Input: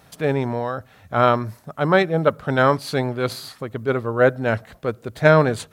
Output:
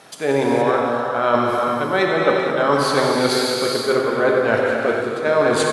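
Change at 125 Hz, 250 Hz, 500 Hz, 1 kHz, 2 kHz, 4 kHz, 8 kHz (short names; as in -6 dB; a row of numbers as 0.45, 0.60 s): -7.0, +2.0, +3.0, +3.0, +2.5, +8.5, +10.5 dB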